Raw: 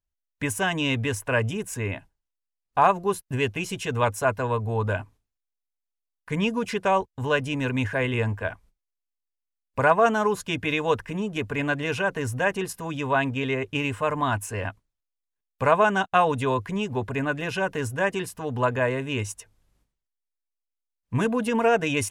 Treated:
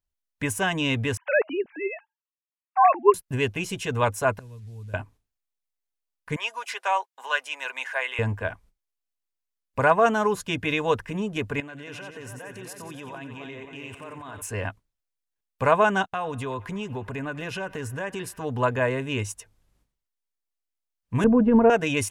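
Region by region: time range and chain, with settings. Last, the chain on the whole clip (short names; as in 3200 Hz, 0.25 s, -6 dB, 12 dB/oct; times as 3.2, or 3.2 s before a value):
1.17–3.14 sine-wave speech + dynamic EQ 430 Hz, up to +4 dB, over -33 dBFS, Q 0.8
4.39–4.94 delta modulation 64 kbps, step -34.5 dBFS + passive tone stack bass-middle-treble 10-0-1
6.36–8.19 HPF 700 Hz 24 dB/oct + comb 7.5 ms, depth 31%
11.6–14.42 HPF 190 Hz 6 dB/oct + level quantiser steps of 20 dB + split-band echo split 1700 Hz, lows 0.27 s, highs 90 ms, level -6 dB
16.04–18.39 compressor 2.5:1, threshold -30 dBFS + narrowing echo 96 ms, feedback 81%, band-pass 1400 Hz, level -19 dB
21.24–21.7 LPF 1600 Hz + tilt -4 dB/oct
whole clip: dry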